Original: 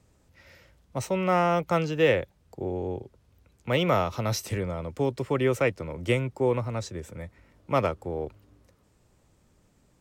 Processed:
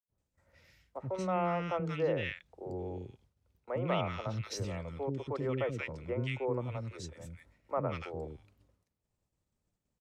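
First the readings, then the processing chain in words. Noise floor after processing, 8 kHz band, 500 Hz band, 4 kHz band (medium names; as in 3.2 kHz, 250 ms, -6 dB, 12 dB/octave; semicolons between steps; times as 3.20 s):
-85 dBFS, -10.5 dB, -9.0 dB, -9.5 dB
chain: three bands offset in time mids, lows, highs 80/180 ms, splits 350/1500 Hz; expander -54 dBFS; low-pass that closes with the level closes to 2.8 kHz, closed at -21.5 dBFS; trim -7 dB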